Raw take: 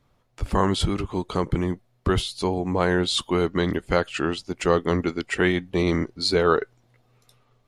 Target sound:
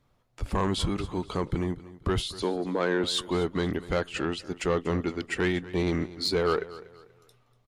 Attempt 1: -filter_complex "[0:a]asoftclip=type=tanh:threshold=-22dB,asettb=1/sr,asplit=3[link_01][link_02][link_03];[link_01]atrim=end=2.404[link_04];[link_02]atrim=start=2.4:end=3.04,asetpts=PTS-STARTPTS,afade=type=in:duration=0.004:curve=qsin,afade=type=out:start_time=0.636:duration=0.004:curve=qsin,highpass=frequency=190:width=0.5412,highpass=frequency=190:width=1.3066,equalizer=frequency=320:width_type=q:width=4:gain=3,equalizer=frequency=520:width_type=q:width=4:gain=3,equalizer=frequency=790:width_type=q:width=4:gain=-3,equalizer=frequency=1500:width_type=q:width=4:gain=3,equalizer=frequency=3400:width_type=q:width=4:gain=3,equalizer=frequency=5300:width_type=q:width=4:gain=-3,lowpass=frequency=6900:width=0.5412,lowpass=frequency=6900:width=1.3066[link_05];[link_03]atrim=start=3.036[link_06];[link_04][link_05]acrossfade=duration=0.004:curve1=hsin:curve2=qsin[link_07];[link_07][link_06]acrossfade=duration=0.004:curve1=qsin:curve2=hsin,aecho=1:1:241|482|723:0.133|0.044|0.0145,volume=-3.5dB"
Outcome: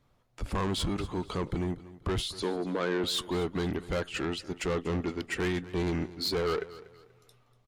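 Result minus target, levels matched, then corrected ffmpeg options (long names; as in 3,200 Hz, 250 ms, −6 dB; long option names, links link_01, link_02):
soft clipping: distortion +7 dB
-filter_complex "[0:a]asoftclip=type=tanh:threshold=-14dB,asettb=1/sr,asplit=3[link_01][link_02][link_03];[link_01]atrim=end=2.404[link_04];[link_02]atrim=start=2.4:end=3.04,asetpts=PTS-STARTPTS,afade=type=in:duration=0.004:curve=qsin,afade=type=out:start_time=0.636:duration=0.004:curve=qsin,highpass=frequency=190:width=0.5412,highpass=frequency=190:width=1.3066,equalizer=frequency=320:width_type=q:width=4:gain=3,equalizer=frequency=520:width_type=q:width=4:gain=3,equalizer=frequency=790:width_type=q:width=4:gain=-3,equalizer=frequency=1500:width_type=q:width=4:gain=3,equalizer=frequency=3400:width_type=q:width=4:gain=3,equalizer=frequency=5300:width_type=q:width=4:gain=-3,lowpass=frequency=6900:width=0.5412,lowpass=frequency=6900:width=1.3066[link_05];[link_03]atrim=start=3.036[link_06];[link_04][link_05]acrossfade=duration=0.004:curve1=hsin:curve2=qsin[link_07];[link_07][link_06]acrossfade=duration=0.004:curve1=qsin:curve2=hsin,aecho=1:1:241|482|723:0.133|0.044|0.0145,volume=-3.5dB"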